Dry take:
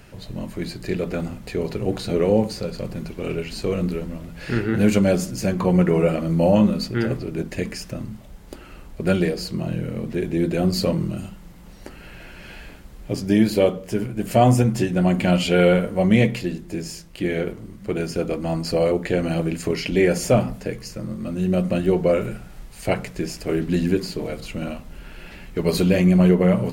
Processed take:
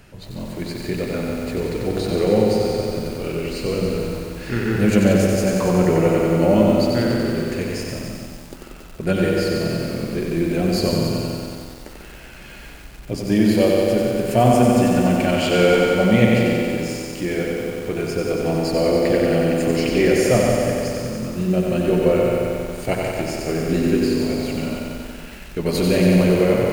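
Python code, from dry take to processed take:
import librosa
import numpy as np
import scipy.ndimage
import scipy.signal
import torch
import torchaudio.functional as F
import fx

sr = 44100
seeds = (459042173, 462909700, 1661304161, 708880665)

y = fx.echo_feedback(x, sr, ms=144, feedback_pct=58, wet_db=-6.5)
y = fx.echo_crushed(y, sr, ms=92, feedback_pct=80, bits=7, wet_db=-3.5)
y = F.gain(torch.from_numpy(y), -1.0).numpy()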